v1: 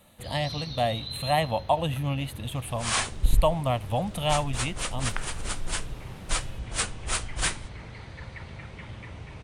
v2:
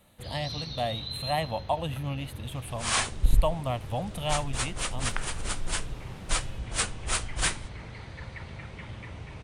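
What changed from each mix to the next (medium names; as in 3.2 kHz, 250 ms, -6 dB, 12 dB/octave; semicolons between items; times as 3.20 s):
speech -4.5 dB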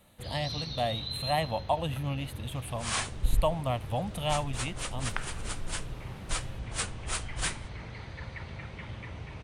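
second sound -5.0 dB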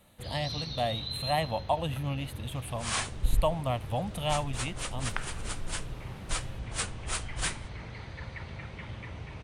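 no change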